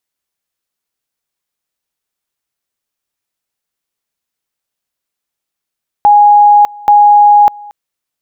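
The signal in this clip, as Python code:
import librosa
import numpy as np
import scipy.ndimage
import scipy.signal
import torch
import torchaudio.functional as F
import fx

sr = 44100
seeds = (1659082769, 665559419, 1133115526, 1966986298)

y = fx.two_level_tone(sr, hz=827.0, level_db=-2.0, drop_db=25.0, high_s=0.6, low_s=0.23, rounds=2)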